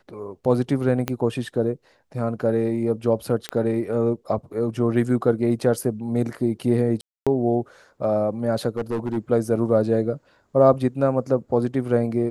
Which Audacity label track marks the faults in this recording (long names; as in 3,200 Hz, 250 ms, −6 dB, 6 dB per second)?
1.080000	1.080000	click −9 dBFS
3.490000	3.490000	click −12 dBFS
7.010000	7.270000	drop-out 256 ms
8.760000	9.170000	clipping −20.5 dBFS